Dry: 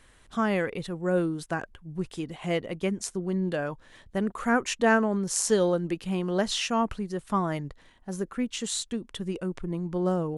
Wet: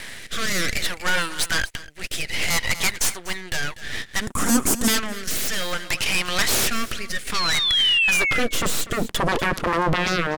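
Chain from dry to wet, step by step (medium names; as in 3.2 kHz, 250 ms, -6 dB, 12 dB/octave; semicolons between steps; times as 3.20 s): Chebyshev shaper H 5 -17 dB, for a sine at -8.5 dBFS; high-pass sweep 2 kHz -> 180 Hz, 8.07–8.68 s; half-wave rectifier; 7.34–8.40 s: painted sound fall 2–4.5 kHz -42 dBFS; in parallel at +1.5 dB: compression, threshold -38 dBFS, peak gain reduction 22 dB; on the sum: sine folder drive 14 dB, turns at -11.5 dBFS; 4.21–4.88 s: graphic EQ 250/2000/4000/8000 Hz +12/-11/-12/+6 dB; on a send: delay 244 ms -15.5 dB; on the sum: rotary cabinet horn 0.6 Hz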